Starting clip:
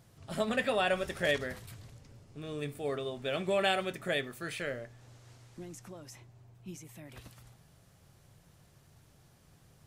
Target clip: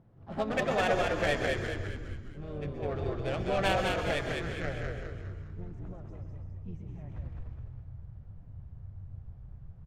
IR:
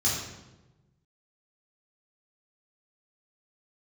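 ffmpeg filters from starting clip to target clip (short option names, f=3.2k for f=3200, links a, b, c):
-filter_complex "[0:a]asplit=2[a][b];[b]asetrate=55563,aresample=44100,atempo=0.793701,volume=-7dB[c];[a][c]amix=inputs=2:normalize=0,adynamicsmooth=sensitivity=3:basefreq=1.1k,asubboost=boost=11.5:cutoff=78,asplit=7[d][e][f][g][h][i][j];[e]adelay=205,afreqshift=-58,volume=-3dB[k];[f]adelay=410,afreqshift=-116,volume=-9.6dB[l];[g]adelay=615,afreqshift=-174,volume=-16.1dB[m];[h]adelay=820,afreqshift=-232,volume=-22.7dB[n];[i]adelay=1025,afreqshift=-290,volume=-29.2dB[o];[j]adelay=1230,afreqshift=-348,volume=-35.8dB[p];[d][k][l][m][n][o][p]amix=inputs=7:normalize=0,asplit=2[q][r];[1:a]atrim=start_sample=2205,adelay=117[s];[r][s]afir=irnorm=-1:irlink=0,volume=-18.5dB[t];[q][t]amix=inputs=2:normalize=0"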